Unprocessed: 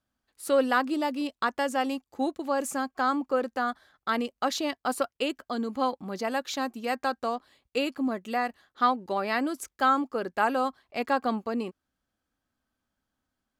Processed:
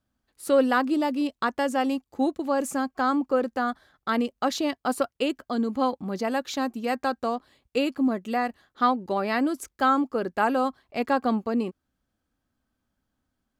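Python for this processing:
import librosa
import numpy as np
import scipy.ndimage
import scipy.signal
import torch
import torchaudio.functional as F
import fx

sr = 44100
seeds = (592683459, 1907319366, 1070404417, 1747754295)

y = fx.low_shelf(x, sr, hz=440.0, db=7.0)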